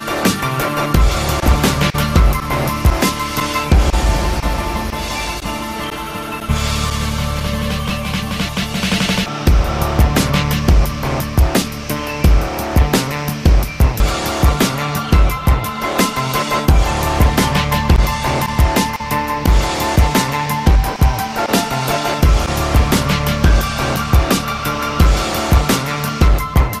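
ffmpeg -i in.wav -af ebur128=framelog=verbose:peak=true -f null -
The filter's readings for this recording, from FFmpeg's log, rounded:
Integrated loudness:
  I:         -16.2 LUFS
  Threshold: -26.2 LUFS
Loudness range:
  LRA:         3.6 LU
  Threshold: -36.3 LUFS
  LRA low:   -19.0 LUFS
  LRA high:  -15.4 LUFS
True peak:
  Peak:       -3.3 dBFS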